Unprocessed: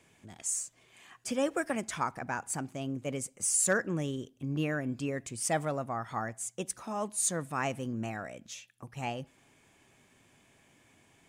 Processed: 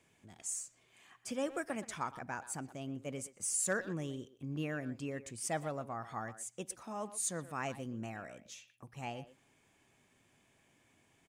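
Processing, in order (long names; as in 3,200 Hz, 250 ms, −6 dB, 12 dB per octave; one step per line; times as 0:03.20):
far-end echo of a speakerphone 120 ms, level −13 dB
level −6.5 dB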